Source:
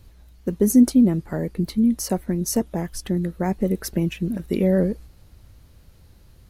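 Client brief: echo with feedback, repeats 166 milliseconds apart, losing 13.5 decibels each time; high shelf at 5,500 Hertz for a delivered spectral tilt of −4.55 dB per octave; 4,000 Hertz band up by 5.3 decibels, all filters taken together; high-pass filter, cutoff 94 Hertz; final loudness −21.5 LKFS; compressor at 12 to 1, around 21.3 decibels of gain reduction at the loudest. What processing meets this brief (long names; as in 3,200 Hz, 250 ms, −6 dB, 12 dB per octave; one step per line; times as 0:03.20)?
high-pass filter 94 Hz
parametric band 4,000 Hz +3.5 dB
high-shelf EQ 5,500 Hz +7 dB
downward compressor 12 to 1, threshold −32 dBFS
repeating echo 166 ms, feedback 21%, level −13.5 dB
level +15 dB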